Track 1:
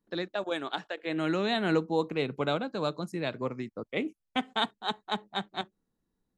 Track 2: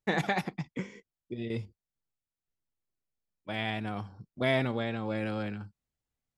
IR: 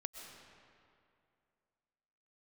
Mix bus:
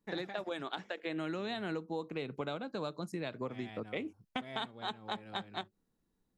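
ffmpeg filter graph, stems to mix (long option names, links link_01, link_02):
-filter_complex "[0:a]volume=0.5dB[link_01];[1:a]volume=-14dB[link_02];[link_01][link_02]amix=inputs=2:normalize=0,acompressor=threshold=-35dB:ratio=6"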